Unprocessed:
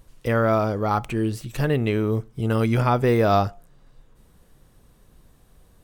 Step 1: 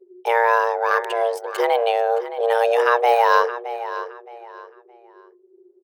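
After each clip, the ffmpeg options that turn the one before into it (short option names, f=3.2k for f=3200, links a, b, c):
-filter_complex "[0:a]anlmdn=1.58,afreqshift=350,asplit=2[a][b];[b]adelay=618,lowpass=f=4.8k:p=1,volume=-12.5dB,asplit=2[c][d];[d]adelay=618,lowpass=f=4.8k:p=1,volume=0.28,asplit=2[e][f];[f]adelay=618,lowpass=f=4.8k:p=1,volume=0.28[g];[a][c][e][g]amix=inputs=4:normalize=0,volume=2.5dB"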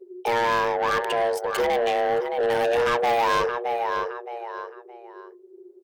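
-filter_complex "[0:a]asplit=2[a][b];[b]acompressor=threshold=-25dB:ratio=6,volume=1.5dB[c];[a][c]amix=inputs=2:normalize=0,asoftclip=type=tanh:threshold=-16.5dB,volume=-1.5dB"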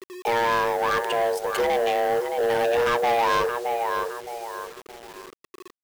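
-af "acrusher=bits=6:mix=0:aa=0.000001"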